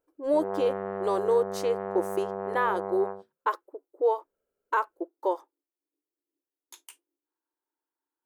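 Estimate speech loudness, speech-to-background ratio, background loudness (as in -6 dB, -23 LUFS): -29.5 LUFS, 5.0 dB, -34.5 LUFS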